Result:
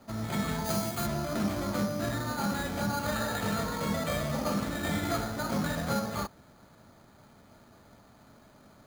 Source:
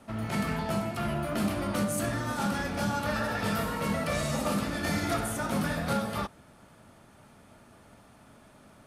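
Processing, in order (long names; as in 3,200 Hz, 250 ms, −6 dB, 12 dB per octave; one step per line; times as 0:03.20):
bad sample-rate conversion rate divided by 8×, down filtered, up hold
0:00.64–0:01.05: high-shelf EQ 4,300 Hz → 6,600 Hz +11 dB
level −1 dB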